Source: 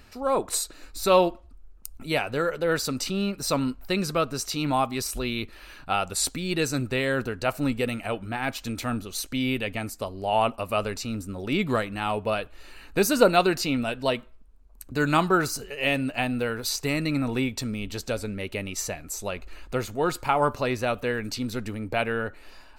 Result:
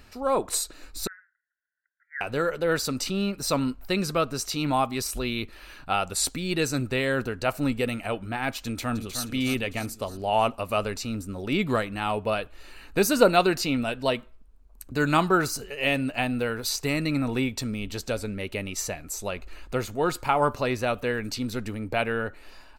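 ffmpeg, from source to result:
-filter_complex "[0:a]asettb=1/sr,asplit=3[a][b][c];[a]atrim=end=1.074[d];[b]atrim=start=1.07:end=2.21,asetpts=PTS-STARTPTS,afade=t=in:d=0.004:c=qsin,afade=t=out:st=1.136:d=0.004:c=qsin,asuperpass=centerf=1700:order=12:qfactor=3.1[e];[c]atrim=start=2.206[f];[d][e]acrossfade=d=0.004:c1=hsin:c2=qsin[g];[g][f]acrossfade=d=0.004:c1=qsin:c2=hsin,asplit=2[h][i];[i]afade=t=in:st=8.62:d=0.01,afade=t=out:st=9.24:d=0.01,aecho=0:1:310|620|930|1240|1550|1860|2170:0.375837|0.206711|0.113691|0.0625299|0.0343915|0.0189153|0.0104034[j];[h][j]amix=inputs=2:normalize=0"

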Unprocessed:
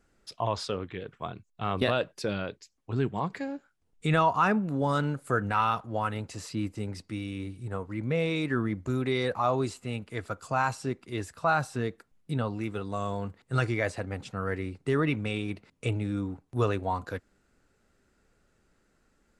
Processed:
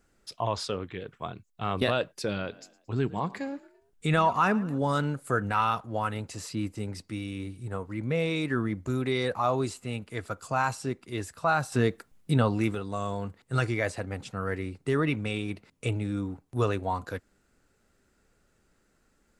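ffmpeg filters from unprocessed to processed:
-filter_complex "[0:a]asettb=1/sr,asplit=3[a][b][c];[a]atrim=end=2.234[d];[b]atrim=start=2.23:end=4.78,asetpts=PTS-STARTPTS,afade=t=in:d=0.004:c=qsin,afade=t=out:st=2.546:d=0.004:c=qsin,asplit=4[e][f][g][h];[f]adelay=112,afreqshift=41,volume=-20.5dB[i];[g]adelay=224,afreqshift=82,volume=-27.1dB[j];[h]adelay=336,afreqshift=123,volume=-33.6dB[k];[e][i][j][k]amix=inputs=4:normalize=0,atrim=end_sample=112455[l];[c]atrim=start=4.776[m];[d][l]acrossfade=d=0.004:c1=hsin:c2=qsin[n];[n][m]acrossfade=d=0.004:c1=qsin:c2=hsin,asplit=3[o][p][q];[o]atrim=end=11.722[r];[p]atrim=start=11.718:end=12.752,asetpts=PTS-STARTPTS,volume=6.5dB[s];[q]atrim=start=12.748[t];[r][s]acrossfade=d=0.004:c1=hsin:c2=hsin[u];[u][t]acrossfade=d=0.004:c1=hsin:c2=hsin,highshelf=f=7.6k:g=6"

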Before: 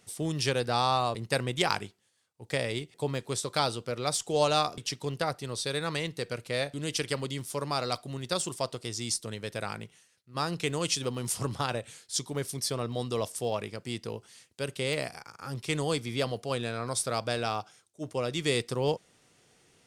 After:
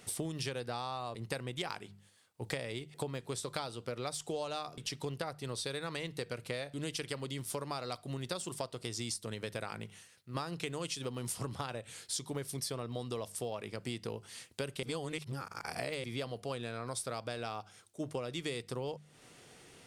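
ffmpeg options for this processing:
-filter_complex "[0:a]asplit=3[a][b][c];[a]atrim=end=14.832[d];[b]atrim=start=14.828:end=16.042,asetpts=PTS-STARTPTS,areverse[e];[c]atrim=start=16.038[f];[d][e]acrossfade=d=0.004:c1=hsin:c2=hsin[g];[g][f]acrossfade=d=0.004:c1=hsin:c2=hsin,equalizer=f=6.2k:t=o:w=0.77:g=-3.5,bandreject=f=50:t=h:w=6,bandreject=f=100:t=h:w=6,bandreject=f=150:t=h:w=6,bandreject=f=200:t=h:w=6,acompressor=threshold=-42dB:ratio=12,volume=7dB"

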